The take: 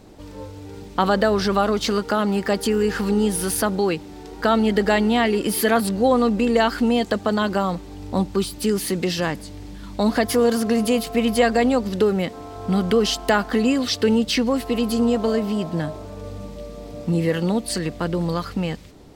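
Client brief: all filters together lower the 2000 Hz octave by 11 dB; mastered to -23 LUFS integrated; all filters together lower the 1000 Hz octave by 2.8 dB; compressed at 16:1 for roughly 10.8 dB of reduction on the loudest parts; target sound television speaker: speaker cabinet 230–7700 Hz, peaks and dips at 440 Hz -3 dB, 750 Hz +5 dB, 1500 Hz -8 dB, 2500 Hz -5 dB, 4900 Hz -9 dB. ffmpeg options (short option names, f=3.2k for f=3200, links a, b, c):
-af "equalizer=f=1k:t=o:g=-6,equalizer=f=2k:t=o:g=-6,acompressor=threshold=-25dB:ratio=16,highpass=f=230:w=0.5412,highpass=f=230:w=1.3066,equalizer=f=440:t=q:w=4:g=-3,equalizer=f=750:t=q:w=4:g=5,equalizer=f=1.5k:t=q:w=4:g=-8,equalizer=f=2.5k:t=q:w=4:g=-5,equalizer=f=4.9k:t=q:w=4:g=-9,lowpass=f=7.7k:w=0.5412,lowpass=f=7.7k:w=1.3066,volume=10.5dB"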